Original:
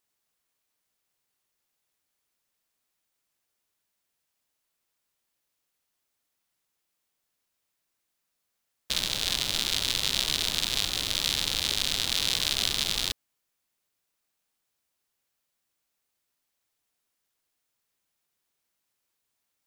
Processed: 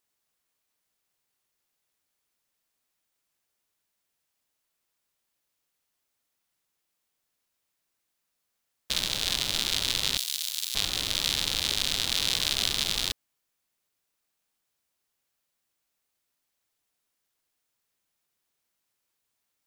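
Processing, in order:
0:10.17–0:10.75: first difference

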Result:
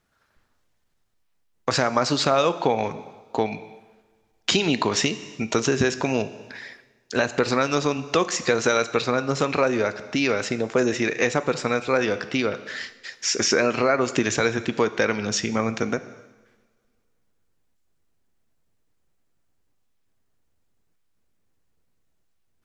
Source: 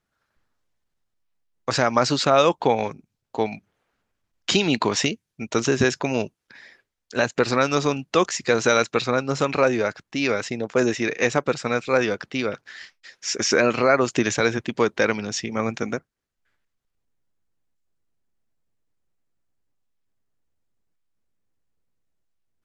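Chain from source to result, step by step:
coupled-rooms reverb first 0.91 s, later 2.4 s, from −24 dB, DRR 12.5 dB
downward compressor 2 to 1, threshold −31 dBFS, peak gain reduction 10.5 dB
level +7 dB

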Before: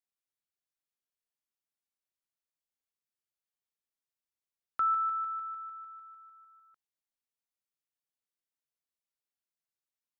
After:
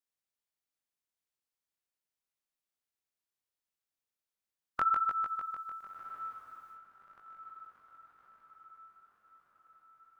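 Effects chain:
ceiling on every frequency bin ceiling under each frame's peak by 19 dB
feedback delay with all-pass diffusion 1,372 ms, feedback 51%, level −14.5 dB
chorus effect 0.96 Hz, delay 17.5 ms, depth 5.2 ms
level +3.5 dB

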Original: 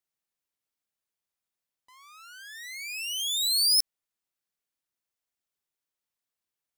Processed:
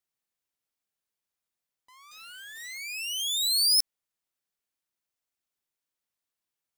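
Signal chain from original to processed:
0:02.11–0:02.78: bit-depth reduction 8 bits, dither none
digital clicks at 0:03.80, −19 dBFS

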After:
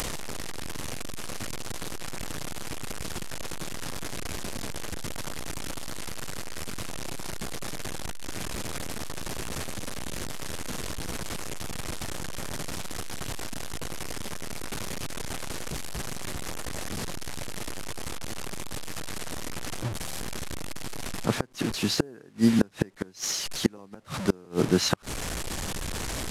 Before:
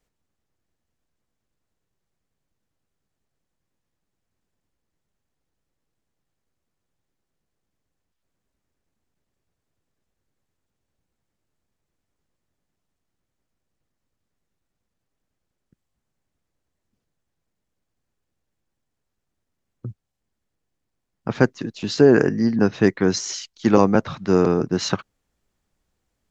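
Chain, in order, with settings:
linear delta modulator 64 kbit/s, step −26.5 dBFS
upward compression, threshold −32 dBFS
gate with flip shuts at −8 dBFS, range −32 dB

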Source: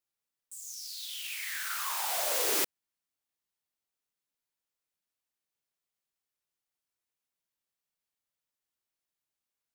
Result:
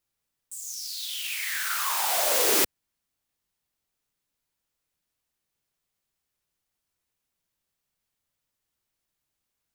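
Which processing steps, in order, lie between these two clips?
low-shelf EQ 170 Hz +10.5 dB
level +6.5 dB

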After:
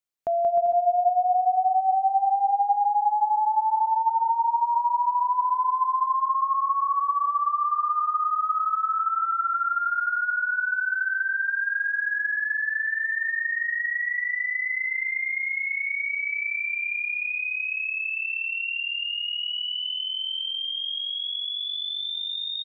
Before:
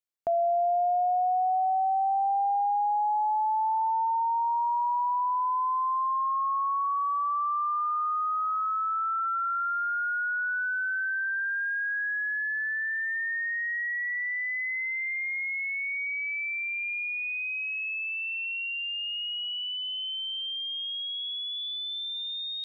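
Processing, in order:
bouncing-ball delay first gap 180 ms, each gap 0.7×, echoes 5
level +1.5 dB

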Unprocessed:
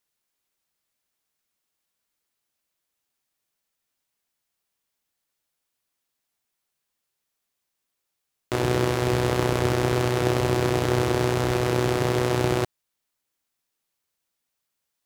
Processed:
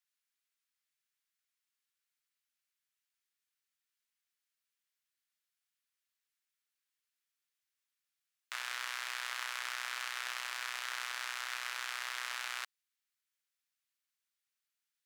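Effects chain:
high-pass filter 1,400 Hz 24 dB per octave
spectral tilt −1.5 dB per octave
level −4 dB

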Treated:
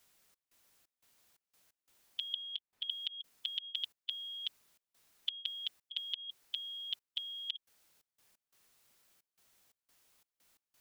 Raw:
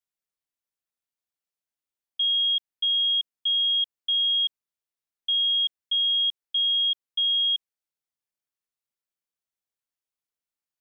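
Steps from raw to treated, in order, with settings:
0:02.34–0:02.90: high-shelf EQ 3,100 Hz −11.5 dB
gate pattern "xx.xx.xx.x.xx" 88 BPM −24 dB
every bin compressed towards the loudest bin 10 to 1
level +1 dB

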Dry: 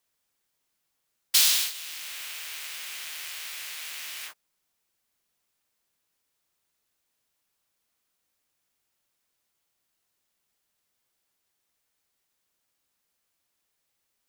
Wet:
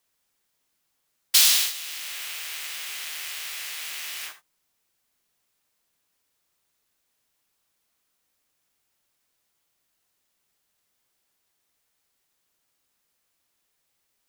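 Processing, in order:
reverb whose tail is shaped and stops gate 100 ms rising, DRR 11.5 dB
level +3 dB

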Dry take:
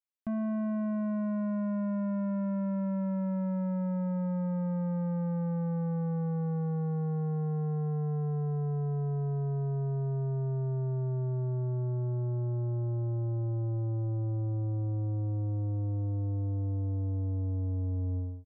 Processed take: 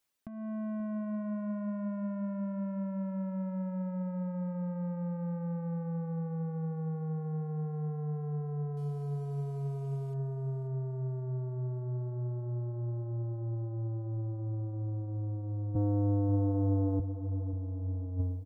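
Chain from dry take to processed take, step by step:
0:08.77–0:10.14: linear delta modulator 64 kbit/s, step −56.5 dBFS
reverb reduction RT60 1.1 s
0:15.75–0:17.00: high-pass filter 160 Hz 12 dB per octave
compressor whose output falls as the input rises −40 dBFS, ratio −0.5
repeating echo 534 ms, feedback 38%, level −13.5 dB
level +8 dB

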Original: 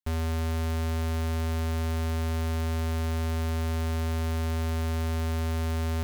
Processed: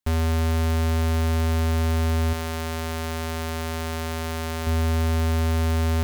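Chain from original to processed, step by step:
0:02.33–0:04.67: low-shelf EQ 260 Hz −10.5 dB
level +6.5 dB

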